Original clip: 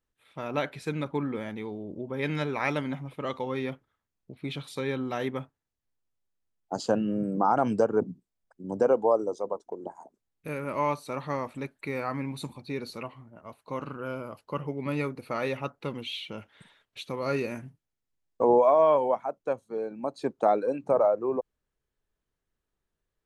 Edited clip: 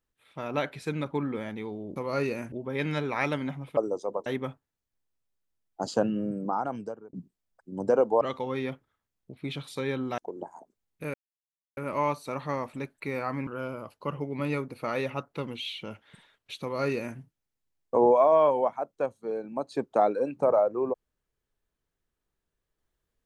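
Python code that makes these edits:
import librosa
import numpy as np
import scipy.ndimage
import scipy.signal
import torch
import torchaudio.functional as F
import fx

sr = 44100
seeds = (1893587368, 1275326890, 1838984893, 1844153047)

y = fx.edit(x, sr, fx.swap(start_s=3.21, length_s=1.97, other_s=9.13, other_length_s=0.49),
    fx.fade_out_span(start_s=6.94, length_s=1.11),
    fx.insert_silence(at_s=10.58, length_s=0.63),
    fx.cut(start_s=12.28, length_s=1.66),
    fx.duplicate(start_s=17.09, length_s=0.56, to_s=1.96), tone=tone)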